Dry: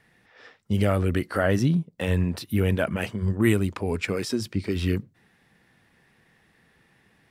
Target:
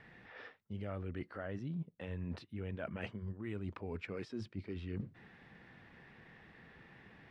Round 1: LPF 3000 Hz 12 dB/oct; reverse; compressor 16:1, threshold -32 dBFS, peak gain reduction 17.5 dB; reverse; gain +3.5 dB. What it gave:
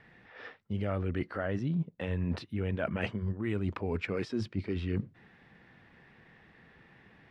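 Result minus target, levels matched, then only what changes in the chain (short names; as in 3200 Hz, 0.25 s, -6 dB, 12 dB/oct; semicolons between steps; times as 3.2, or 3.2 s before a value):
compressor: peak gain reduction -9.5 dB
change: compressor 16:1, threshold -42 dBFS, peak gain reduction 27 dB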